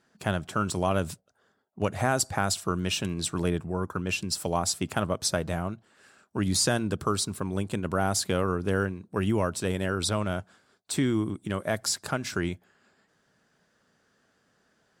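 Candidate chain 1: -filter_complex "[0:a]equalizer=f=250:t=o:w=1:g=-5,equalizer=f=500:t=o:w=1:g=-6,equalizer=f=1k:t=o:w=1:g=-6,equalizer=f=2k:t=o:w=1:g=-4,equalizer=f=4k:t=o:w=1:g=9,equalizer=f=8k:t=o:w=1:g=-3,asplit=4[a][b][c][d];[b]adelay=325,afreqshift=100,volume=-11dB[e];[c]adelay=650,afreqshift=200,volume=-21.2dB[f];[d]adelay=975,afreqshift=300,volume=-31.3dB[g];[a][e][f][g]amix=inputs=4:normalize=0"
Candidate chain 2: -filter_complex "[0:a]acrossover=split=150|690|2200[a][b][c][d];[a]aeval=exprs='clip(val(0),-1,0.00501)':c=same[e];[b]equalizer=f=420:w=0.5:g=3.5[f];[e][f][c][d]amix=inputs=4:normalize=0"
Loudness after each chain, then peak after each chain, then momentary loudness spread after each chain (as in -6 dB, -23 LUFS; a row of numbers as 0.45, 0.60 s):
-29.5, -27.5 LUFS; -11.0, -10.5 dBFS; 11, 6 LU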